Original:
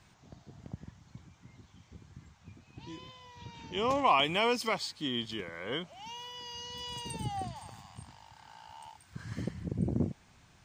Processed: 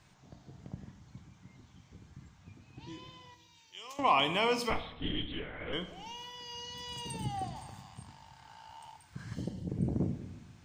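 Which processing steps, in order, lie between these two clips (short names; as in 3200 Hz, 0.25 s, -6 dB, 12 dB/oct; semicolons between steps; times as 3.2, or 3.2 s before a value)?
3.34–3.99 differentiator; 4.7–5.73 LPC vocoder at 8 kHz whisper; 9.34–9.69 spectral gain 950–2700 Hz -12 dB; shoebox room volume 320 m³, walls mixed, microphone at 0.44 m; gain -1.5 dB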